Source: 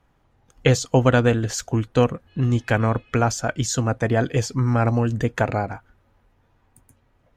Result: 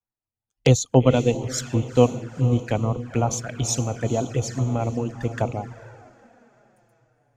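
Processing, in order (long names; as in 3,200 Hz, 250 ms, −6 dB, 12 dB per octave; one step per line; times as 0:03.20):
reverb reduction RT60 1.1 s
feedback delay with all-pass diffusion 467 ms, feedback 60%, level −9.5 dB
flanger swept by the level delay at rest 9.5 ms, full sweep at −19 dBFS
multiband upward and downward expander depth 70%
level −1 dB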